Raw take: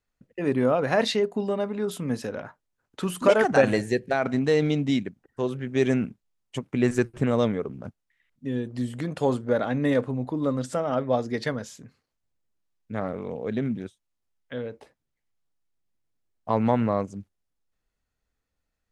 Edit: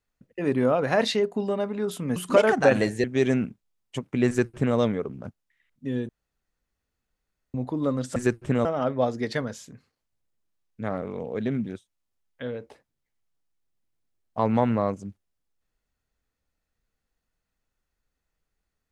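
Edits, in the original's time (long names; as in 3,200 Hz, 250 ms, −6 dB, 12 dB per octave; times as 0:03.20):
0:02.16–0:03.08: remove
0:03.96–0:05.64: remove
0:06.88–0:07.37: duplicate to 0:10.76
0:08.69–0:10.14: fill with room tone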